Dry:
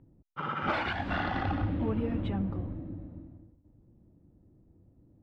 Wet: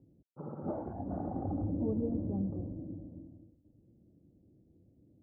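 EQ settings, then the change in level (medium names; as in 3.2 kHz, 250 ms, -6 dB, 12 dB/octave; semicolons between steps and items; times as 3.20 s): high-pass 140 Hz 6 dB/octave; inverse Chebyshev low-pass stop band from 3.7 kHz, stop band 80 dB; distance through air 210 m; 0.0 dB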